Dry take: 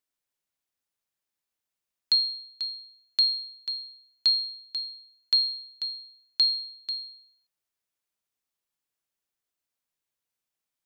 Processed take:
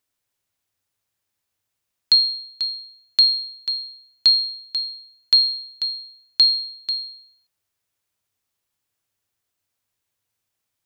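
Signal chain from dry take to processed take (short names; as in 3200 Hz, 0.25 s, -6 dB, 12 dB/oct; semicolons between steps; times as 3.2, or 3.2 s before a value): bell 98 Hz +14 dB 0.41 oct; gain +7.5 dB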